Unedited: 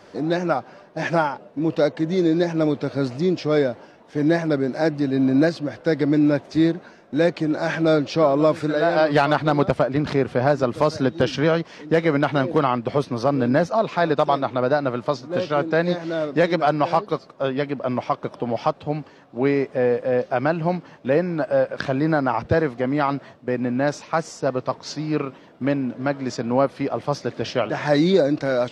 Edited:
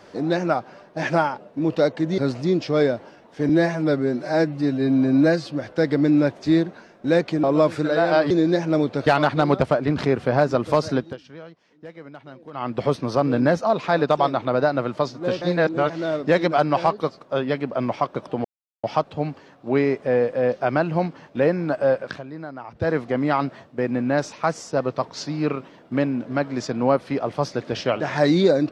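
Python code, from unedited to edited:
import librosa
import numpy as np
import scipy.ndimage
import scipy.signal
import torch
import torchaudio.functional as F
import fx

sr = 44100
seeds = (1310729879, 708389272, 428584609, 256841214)

y = fx.edit(x, sr, fx.move(start_s=2.18, length_s=0.76, to_s=9.15),
    fx.stretch_span(start_s=4.25, length_s=1.35, factor=1.5),
    fx.cut(start_s=7.52, length_s=0.76),
    fx.fade_down_up(start_s=11.0, length_s=1.86, db=-21.5, fade_s=0.25),
    fx.reverse_span(start_s=15.5, length_s=0.48),
    fx.insert_silence(at_s=18.53, length_s=0.39),
    fx.fade_down_up(start_s=21.68, length_s=0.98, db=-15.0, fade_s=0.24), tone=tone)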